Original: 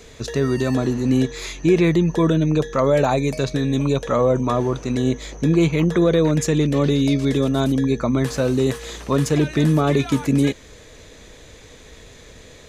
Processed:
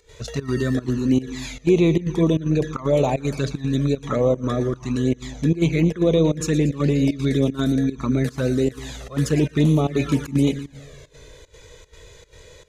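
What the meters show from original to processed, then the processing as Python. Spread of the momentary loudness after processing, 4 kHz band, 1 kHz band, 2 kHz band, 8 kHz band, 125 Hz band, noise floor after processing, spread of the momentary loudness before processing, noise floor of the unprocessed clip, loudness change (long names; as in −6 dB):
7 LU, −3.5 dB, −6.0 dB, −4.0 dB, −3.5 dB, −1.0 dB, −48 dBFS, 6 LU, −44 dBFS, −2.0 dB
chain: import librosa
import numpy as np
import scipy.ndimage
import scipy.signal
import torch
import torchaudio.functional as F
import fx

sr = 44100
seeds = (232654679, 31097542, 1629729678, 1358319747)

y = fx.echo_split(x, sr, split_hz=540.0, low_ms=204, high_ms=116, feedback_pct=52, wet_db=-13.5)
y = fx.volume_shaper(y, sr, bpm=152, per_beat=1, depth_db=-17, release_ms=87.0, shape='slow start')
y = fx.env_flanger(y, sr, rest_ms=2.2, full_db=-12.5)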